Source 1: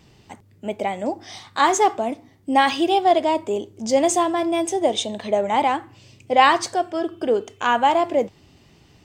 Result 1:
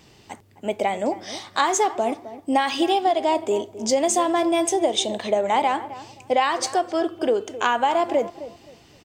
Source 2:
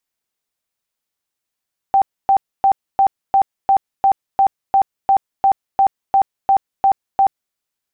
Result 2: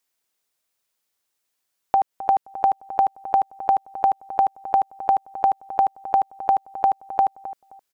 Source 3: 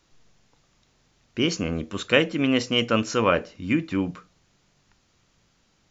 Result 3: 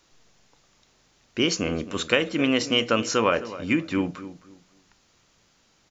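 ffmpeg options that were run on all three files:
-filter_complex "[0:a]bass=f=250:g=-6,treble=f=4000:g=2,acompressor=threshold=0.112:ratio=12,asplit=2[s0][s1];[s1]adelay=262,lowpass=f=1400:p=1,volume=0.2,asplit=2[s2][s3];[s3]adelay=262,lowpass=f=1400:p=1,volume=0.25,asplit=2[s4][s5];[s5]adelay=262,lowpass=f=1400:p=1,volume=0.25[s6];[s2][s4][s6]amix=inputs=3:normalize=0[s7];[s0][s7]amix=inputs=2:normalize=0,volume=1.41"

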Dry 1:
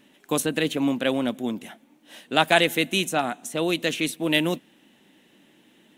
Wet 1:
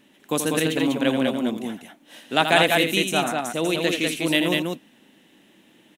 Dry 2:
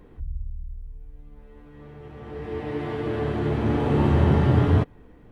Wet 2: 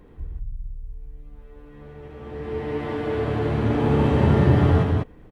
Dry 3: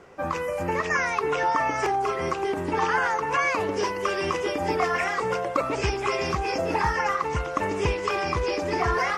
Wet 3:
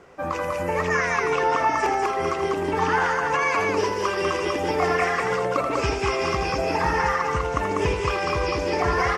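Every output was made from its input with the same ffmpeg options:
-af "aecho=1:1:81.63|195.3:0.398|0.708"

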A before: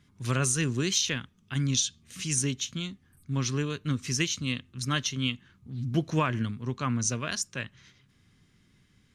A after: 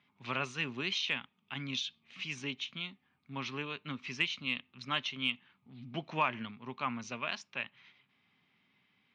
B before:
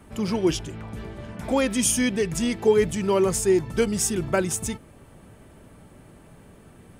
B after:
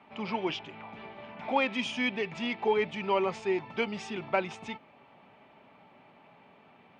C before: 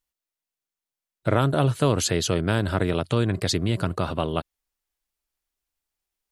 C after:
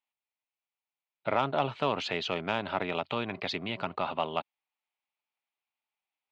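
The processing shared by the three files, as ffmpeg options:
-af "highpass=320,equalizer=f=330:t=q:w=4:g=-9,equalizer=f=480:t=q:w=4:g=-7,equalizer=f=850:t=q:w=4:g=6,equalizer=f=1600:t=q:w=4:g=-6,equalizer=f=2400:t=q:w=4:g=6,lowpass=f=3600:w=0.5412,lowpass=f=3600:w=1.3066,acontrast=77,volume=0.355"

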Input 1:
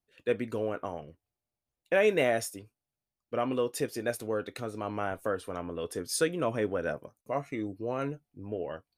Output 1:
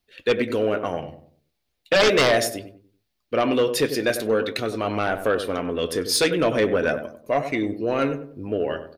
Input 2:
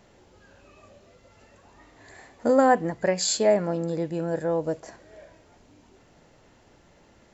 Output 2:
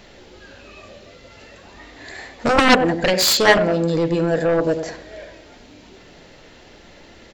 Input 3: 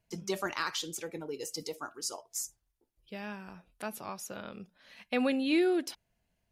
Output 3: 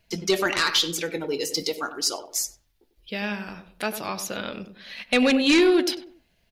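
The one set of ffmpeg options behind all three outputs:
-filter_complex "[0:a]flanger=delay=0.7:depth=7:regen=81:speed=0.4:shape=triangular,equalizer=f=125:t=o:w=1:g=-5,equalizer=f=1000:t=o:w=1:g=-4,equalizer=f=2000:t=o:w=1:g=3,equalizer=f=4000:t=o:w=1:g=7,equalizer=f=8000:t=o:w=1:g=-5,asplit=2[s0][s1];[s1]adelay=96,lowpass=f=1000:p=1,volume=0.355,asplit=2[s2][s3];[s3]adelay=96,lowpass=f=1000:p=1,volume=0.39,asplit=2[s4][s5];[s5]adelay=96,lowpass=f=1000:p=1,volume=0.39,asplit=2[s6][s7];[s7]adelay=96,lowpass=f=1000:p=1,volume=0.39[s8];[s2][s4][s6][s8]amix=inputs=4:normalize=0[s9];[s0][s9]amix=inputs=2:normalize=0,aeval=exprs='0.299*(cos(1*acos(clip(val(0)/0.299,-1,1)))-cos(1*PI/2))+0.15*(cos(7*acos(clip(val(0)/0.299,-1,1)))-cos(7*PI/2))':c=same,volume=2.51"

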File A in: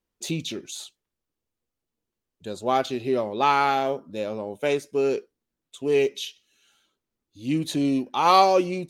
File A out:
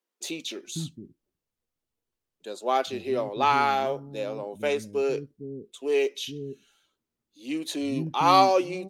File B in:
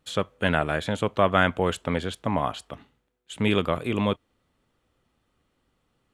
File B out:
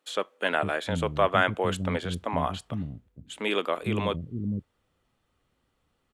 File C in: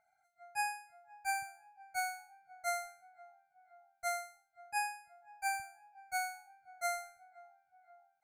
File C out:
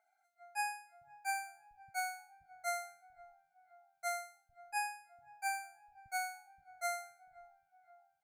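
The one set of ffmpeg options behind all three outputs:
-filter_complex "[0:a]acrossover=split=270[s0][s1];[s0]adelay=460[s2];[s2][s1]amix=inputs=2:normalize=0,volume=0.841"

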